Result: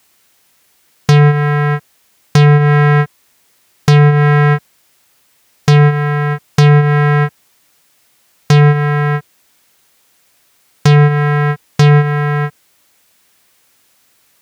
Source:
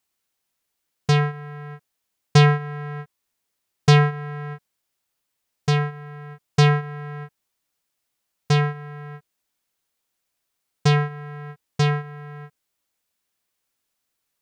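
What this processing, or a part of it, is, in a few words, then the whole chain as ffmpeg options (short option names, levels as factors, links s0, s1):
mastering chain: -filter_complex "[0:a]highpass=59,equalizer=f=2000:t=o:w=0.77:g=2,acrossover=split=730|1600[s0][s1][s2];[s0]acompressor=threshold=0.126:ratio=4[s3];[s1]acompressor=threshold=0.00891:ratio=4[s4];[s2]acompressor=threshold=0.0178:ratio=4[s5];[s3][s4][s5]amix=inputs=3:normalize=0,acompressor=threshold=0.0501:ratio=1.5,asoftclip=type=tanh:threshold=0.126,alimiter=level_in=15.8:limit=0.891:release=50:level=0:latency=1,volume=0.891"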